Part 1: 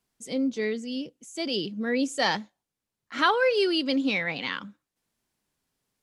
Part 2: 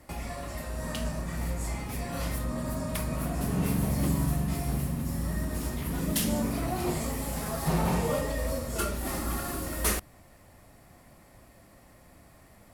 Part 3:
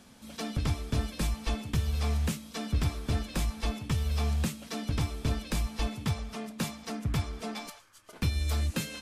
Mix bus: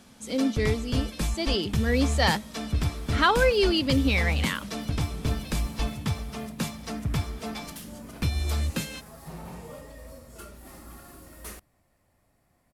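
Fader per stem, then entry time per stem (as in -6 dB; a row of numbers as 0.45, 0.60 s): +1.0, -14.0, +2.0 dB; 0.00, 1.60, 0.00 s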